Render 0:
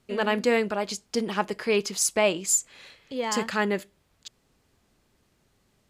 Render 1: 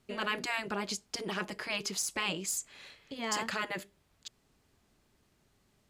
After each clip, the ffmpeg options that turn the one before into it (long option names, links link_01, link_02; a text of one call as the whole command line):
ffmpeg -i in.wav -af "afftfilt=real='re*lt(hypot(re,im),0.251)':imag='im*lt(hypot(re,im),0.251)':win_size=1024:overlap=0.75,deesser=0.45,bandreject=frequency=510:width=14,volume=-3dB" out.wav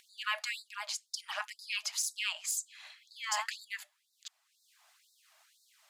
ffmpeg -i in.wav -af "acompressor=mode=upward:threshold=-50dB:ratio=2.5,aphaser=in_gain=1:out_gain=1:delay=1.9:decay=0.27:speed=1.4:type=triangular,afftfilt=real='re*gte(b*sr/1024,570*pow(3700/570,0.5+0.5*sin(2*PI*2*pts/sr)))':imag='im*gte(b*sr/1024,570*pow(3700/570,0.5+0.5*sin(2*PI*2*pts/sr)))':win_size=1024:overlap=0.75" out.wav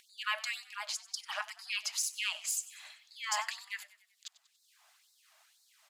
ffmpeg -i in.wav -filter_complex "[0:a]asplit=5[link_01][link_02][link_03][link_04][link_05];[link_02]adelay=95,afreqshift=44,volume=-18dB[link_06];[link_03]adelay=190,afreqshift=88,volume=-23.7dB[link_07];[link_04]adelay=285,afreqshift=132,volume=-29.4dB[link_08];[link_05]adelay=380,afreqshift=176,volume=-35dB[link_09];[link_01][link_06][link_07][link_08][link_09]amix=inputs=5:normalize=0" out.wav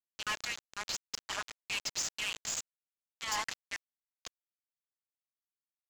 ffmpeg -i in.wav -af "aresample=16000,acrusher=bits=5:mix=0:aa=0.000001,aresample=44100,asoftclip=type=tanh:threshold=-30.5dB,volume=2.5dB" out.wav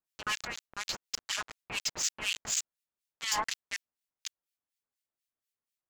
ffmpeg -i in.wav -filter_complex "[0:a]acrossover=split=1700[link_01][link_02];[link_01]aeval=exprs='val(0)*(1-1/2+1/2*cos(2*PI*4.1*n/s))':channel_layout=same[link_03];[link_02]aeval=exprs='val(0)*(1-1/2-1/2*cos(2*PI*4.1*n/s))':channel_layout=same[link_04];[link_03][link_04]amix=inputs=2:normalize=0,volume=7.5dB" out.wav